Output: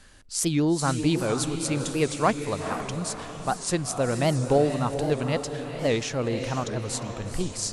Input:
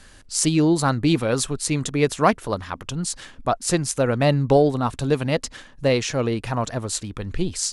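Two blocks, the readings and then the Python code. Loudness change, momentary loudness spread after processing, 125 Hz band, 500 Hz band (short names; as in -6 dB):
-4.0 dB, 8 LU, -4.5 dB, -4.0 dB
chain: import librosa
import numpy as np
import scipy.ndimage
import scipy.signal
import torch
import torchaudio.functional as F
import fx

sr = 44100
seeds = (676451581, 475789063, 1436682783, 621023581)

y = fx.echo_diffused(x, sr, ms=476, feedback_pct=46, wet_db=-7.5)
y = fx.record_warp(y, sr, rpm=78.0, depth_cents=160.0)
y = F.gain(torch.from_numpy(y), -5.0).numpy()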